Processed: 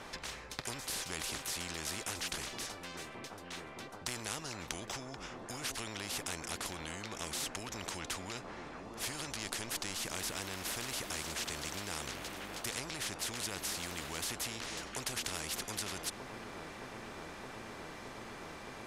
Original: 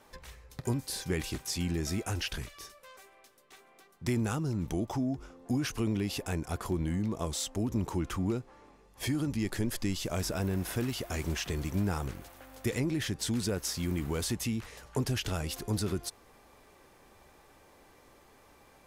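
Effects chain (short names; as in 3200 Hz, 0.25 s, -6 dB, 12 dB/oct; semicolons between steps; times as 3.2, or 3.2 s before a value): air absorption 57 m; on a send: band-limited delay 0.618 s, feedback 82%, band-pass 420 Hz, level -12 dB; on the sum: spectral compressor 4:1; gain +6 dB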